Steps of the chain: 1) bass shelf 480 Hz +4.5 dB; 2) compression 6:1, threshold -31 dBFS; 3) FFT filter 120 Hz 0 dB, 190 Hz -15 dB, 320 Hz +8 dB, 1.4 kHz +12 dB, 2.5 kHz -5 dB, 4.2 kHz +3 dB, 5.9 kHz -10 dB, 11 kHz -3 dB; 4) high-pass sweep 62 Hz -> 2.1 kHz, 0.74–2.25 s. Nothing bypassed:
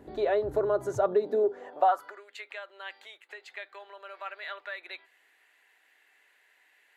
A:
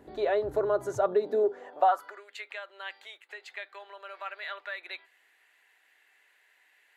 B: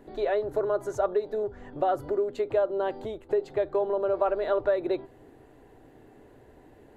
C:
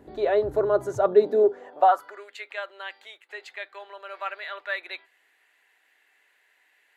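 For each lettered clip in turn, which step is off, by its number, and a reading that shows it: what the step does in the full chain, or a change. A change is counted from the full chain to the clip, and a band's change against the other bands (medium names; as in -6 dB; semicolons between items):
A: 1, 250 Hz band -2.0 dB; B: 4, 250 Hz band +6.0 dB; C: 2, mean gain reduction 3.0 dB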